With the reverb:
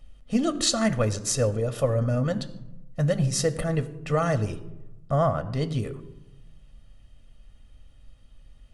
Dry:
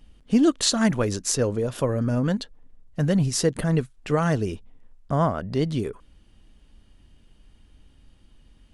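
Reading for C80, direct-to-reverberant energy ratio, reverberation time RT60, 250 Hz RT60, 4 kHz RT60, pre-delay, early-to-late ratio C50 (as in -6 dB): 17.0 dB, 9.5 dB, 0.95 s, 1.2 s, 0.50 s, 3 ms, 15.5 dB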